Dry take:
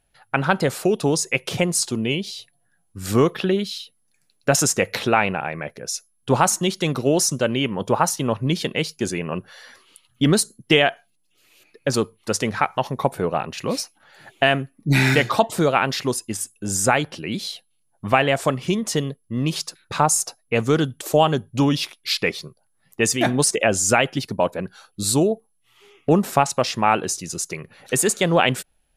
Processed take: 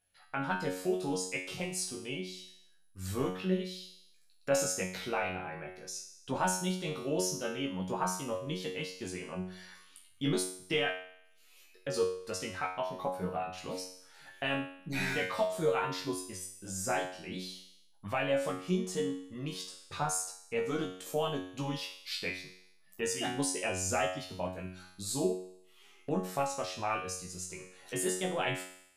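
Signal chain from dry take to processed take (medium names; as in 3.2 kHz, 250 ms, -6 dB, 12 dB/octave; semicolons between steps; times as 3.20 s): chorus voices 6, 0.13 Hz, delay 17 ms, depth 4.9 ms; feedback comb 92 Hz, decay 0.59 s, harmonics all, mix 90%; tape noise reduction on one side only encoder only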